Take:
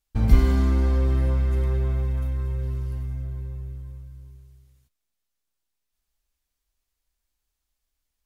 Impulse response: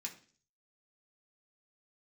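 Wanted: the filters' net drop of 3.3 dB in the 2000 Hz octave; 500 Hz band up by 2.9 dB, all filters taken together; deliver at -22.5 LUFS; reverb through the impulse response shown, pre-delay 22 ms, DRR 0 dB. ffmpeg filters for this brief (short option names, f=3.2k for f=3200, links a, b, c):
-filter_complex "[0:a]equalizer=f=500:t=o:g=4,equalizer=f=2k:t=o:g=-4.5,asplit=2[a][b];[1:a]atrim=start_sample=2205,adelay=22[c];[b][c]afir=irnorm=-1:irlink=0,volume=2dB[d];[a][d]amix=inputs=2:normalize=0,volume=-1dB"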